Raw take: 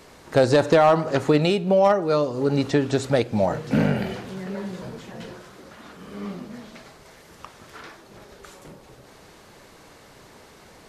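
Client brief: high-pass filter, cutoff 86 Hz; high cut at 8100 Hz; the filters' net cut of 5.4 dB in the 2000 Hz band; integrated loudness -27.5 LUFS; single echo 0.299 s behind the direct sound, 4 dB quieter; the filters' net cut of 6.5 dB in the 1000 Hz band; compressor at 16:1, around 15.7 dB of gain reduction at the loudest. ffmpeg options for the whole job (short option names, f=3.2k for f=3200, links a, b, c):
-af "highpass=86,lowpass=8.1k,equalizer=f=1k:t=o:g=-8.5,equalizer=f=2k:t=o:g=-4,acompressor=threshold=-30dB:ratio=16,aecho=1:1:299:0.631,volume=8dB"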